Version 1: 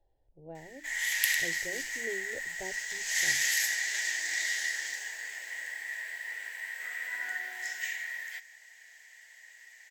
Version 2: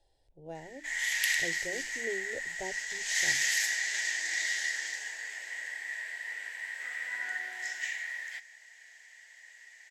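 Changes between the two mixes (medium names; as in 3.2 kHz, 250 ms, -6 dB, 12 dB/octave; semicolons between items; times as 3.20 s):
speech: remove tape spacing loss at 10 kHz 45 dB; master: add low-pass 9.2 kHz 12 dB/octave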